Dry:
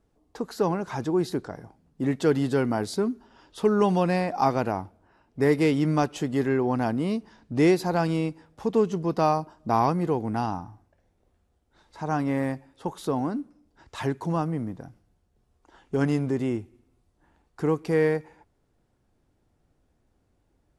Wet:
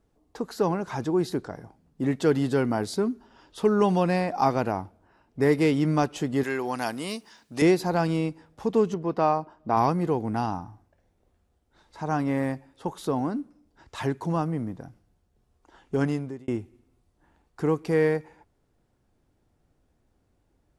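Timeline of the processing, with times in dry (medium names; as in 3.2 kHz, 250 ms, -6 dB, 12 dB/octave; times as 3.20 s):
6.43–7.62 s: tilt EQ +4 dB/octave
8.94–9.77 s: tone controls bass -5 dB, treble -12 dB
15.98–16.48 s: fade out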